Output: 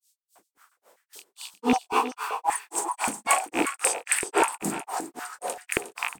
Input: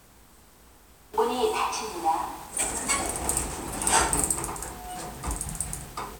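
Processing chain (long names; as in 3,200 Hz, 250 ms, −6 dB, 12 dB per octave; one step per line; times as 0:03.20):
loose part that buzzes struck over −34 dBFS, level −16 dBFS
noise reduction from a noise print of the clip's start 10 dB
in parallel at −1.5 dB: downward compressor, threshold −34 dBFS, peak gain reduction 16.5 dB
on the sum: multiband delay without the direct sound highs, lows 360 ms, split 4,000 Hz
granular cloud 172 ms, grains 3.7 per second, spray 26 ms, pitch spread up and down by 0 semitones
single-tap delay 359 ms −10.5 dB
high-pass on a step sequencer 5.2 Hz 220–1,800 Hz
level +3 dB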